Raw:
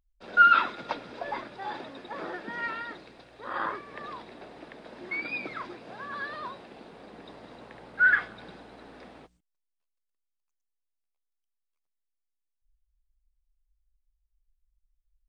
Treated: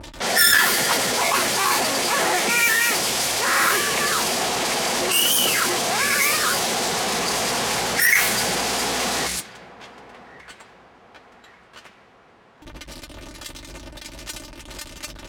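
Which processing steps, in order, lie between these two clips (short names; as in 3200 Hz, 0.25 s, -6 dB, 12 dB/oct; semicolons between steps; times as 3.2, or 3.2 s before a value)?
switching spikes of -15 dBFS; notch comb 300 Hz; power-law curve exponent 0.35; formant shift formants +4 st; in parallel at -7 dB: overloaded stage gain 8.5 dB; on the sum: HPF 45 Hz; low shelf 190 Hz -4.5 dB; on a send: feedback echo 1.138 s, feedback 40%, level -19 dB; on the sum: low-pass opened by the level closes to 1100 Hz, open at -9.5 dBFS; gain -4 dB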